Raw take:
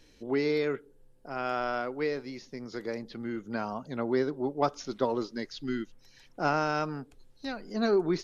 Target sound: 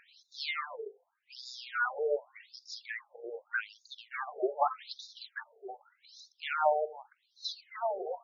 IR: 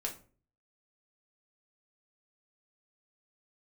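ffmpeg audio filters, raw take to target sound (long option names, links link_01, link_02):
-filter_complex "[0:a]asplit=2[link_01][link_02];[1:a]atrim=start_sample=2205,adelay=47[link_03];[link_02][link_03]afir=irnorm=-1:irlink=0,volume=-20dB[link_04];[link_01][link_04]amix=inputs=2:normalize=0,acontrast=60,volume=19.5dB,asoftclip=hard,volume=-19.5dB,bandreject=frequency=50:width_type=h:width=6,bandreject=frequency=100:width_type=h:width=6,bandreject=frequency=150:width_type=h:width=6,bandreject=frequency=200:width_type=h:width=6,bandreject=frequency=250:width_type=h:width=6,bandreject=frequency=300:width_type=h:width=6,bandreject=frequency=350:width_type=h:width=6,bandreject=frequency=400:width_type=h:width=6,bandreject=frequency=450:width_type=h:width=6,aphaser=in_gain=1:out_gain=1:delay=4.6:decay=0.53:speed=0.3:type=triangular,afftfilt=real='re*between(b*sr/1024,540*pow(5100/540,0.5+0.5*sin(2*PI*0.84*pts/sr))/1.41,540*pow(5100/540,0.5+0.5*sin(2*PI*0.84*pts/sr))*1.41)':imag='im*between(b*sr/1024,540*pow(5100/540,0.5+0.5*sin(2*PI*0.84*pts/sr))/1.41,540*pow(5100/540,0.5+0.5*sin(2*PI*0.84*pts/sr))*1.41)':win_size=1024:overlap=0.75"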